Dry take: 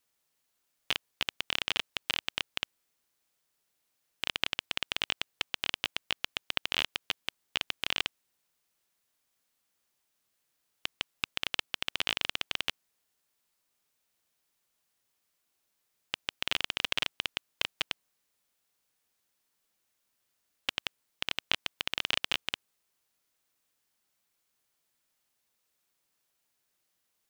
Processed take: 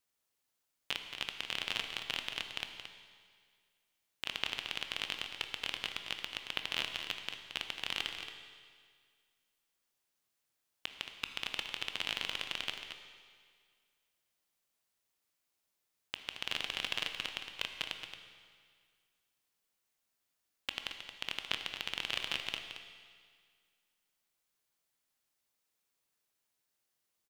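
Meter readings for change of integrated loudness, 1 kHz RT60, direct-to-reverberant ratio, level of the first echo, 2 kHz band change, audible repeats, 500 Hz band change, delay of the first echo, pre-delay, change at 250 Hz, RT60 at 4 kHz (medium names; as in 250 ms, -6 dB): -5.0 dB, 1.9 s, 4.0 dB, -9.0 dB, -4.5 dB, 1, -4.5 dB, 224 ms, 16 ms, -4.5 dB, 1.9 s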